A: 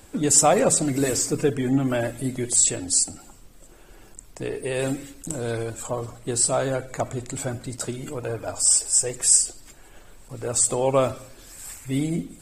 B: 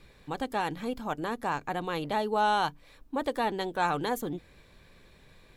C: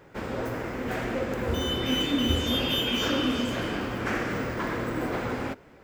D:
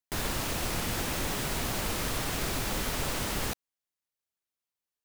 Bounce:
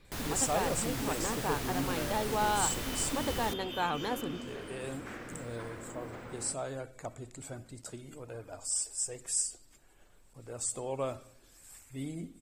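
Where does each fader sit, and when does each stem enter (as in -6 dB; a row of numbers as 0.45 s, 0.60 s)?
-14.5 dB, -4.5 dB, -15.5 dB, -6.5 dB; 0.05 s, 0.00 s, 1.00 s, 0.00 s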